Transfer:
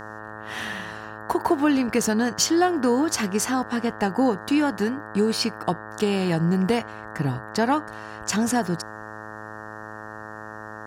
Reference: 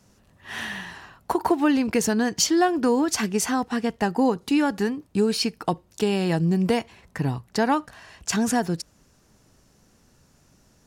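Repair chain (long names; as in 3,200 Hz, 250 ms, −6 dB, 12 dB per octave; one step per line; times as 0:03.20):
hum removal 107.7 Hz, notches 17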